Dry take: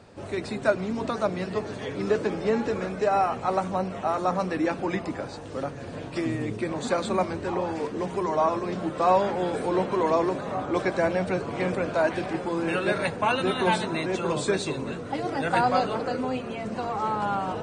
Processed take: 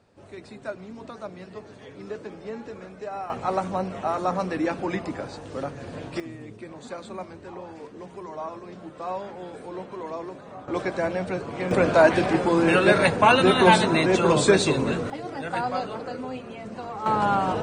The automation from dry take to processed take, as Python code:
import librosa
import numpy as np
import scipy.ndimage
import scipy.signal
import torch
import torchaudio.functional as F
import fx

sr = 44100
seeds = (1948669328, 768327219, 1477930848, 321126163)

y = fx.gain(x, sr, db=fx.steps((0.0, -11.0), (3.3, 0.0), (6.2, -11.0), (10.68, -2.0), (11.71, 7.5), (15.1, -5.0), (17.06, 5.0)))